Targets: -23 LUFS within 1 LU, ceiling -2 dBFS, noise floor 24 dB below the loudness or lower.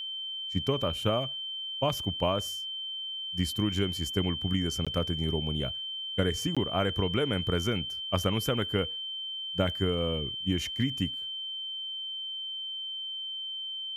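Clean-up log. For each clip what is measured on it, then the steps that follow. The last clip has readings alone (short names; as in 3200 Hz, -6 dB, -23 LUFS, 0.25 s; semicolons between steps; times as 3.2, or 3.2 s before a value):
dropouts 2; longest dropout 16 ms; steady tone 3100 Hz; tone level -34 dBFS; loudness -30.5 LUFS; peak -14.0 dBFS; loudness target -23.0 LUFS
-> interpolate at 4.85/6.55, 16 ms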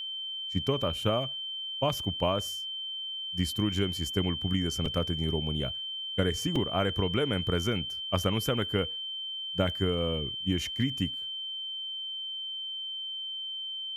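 dropouts 0; steady tone 3100 Hz; tone level -34 dBFS
-> notch 3100 Hz, Q 30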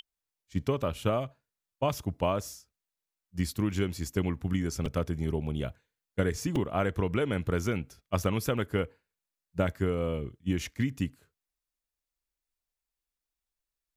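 steady tone none; loudness -31.5 LUFS; peak -14.0 dBFS; loudness target -23.0 LUFS
-> gain +8.5 dB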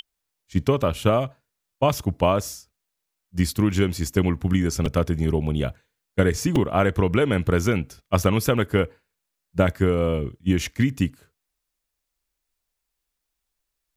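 loudness -23.0 LUFS; peak -5.5 dBFS; noise floor -81 dBFS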